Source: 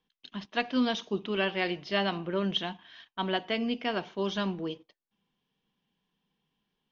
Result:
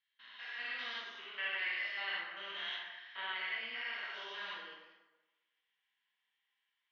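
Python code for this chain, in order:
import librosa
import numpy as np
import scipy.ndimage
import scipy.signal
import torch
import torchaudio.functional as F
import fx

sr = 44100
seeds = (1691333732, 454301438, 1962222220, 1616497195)

y = fx.spec_steps(x, sr, hold_ms=200)
y = fx.peak_eq(y, sr, hz=2000.0, db=8.5, octaves=0.3)
y = fx.rider(y, sr, range_db=4, speed_s=0.5)
y = fx.ladder_bandpass(y, sr, hz=2300.0, resonance_pct=20)
y = fx.rev_plate(y, sr, seeds[0], rt60_s=1.1, hf_ratio=0.6, predelay_ms=0, drr_db=-4.5)
y = F.gain(torch.from_numpy(y), 5.0).numpy()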